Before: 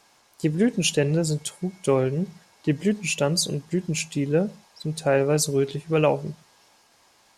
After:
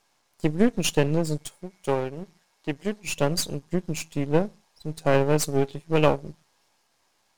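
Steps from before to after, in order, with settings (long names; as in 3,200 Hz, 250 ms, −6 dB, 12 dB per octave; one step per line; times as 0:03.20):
gain on one half-wave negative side −12 dB
0:01.61–0:03.07: low-shelf EQ 290 Hz −8 dB
expander for the loud parts 1.5 to 1, over −38 dBFS
level +3.5 dB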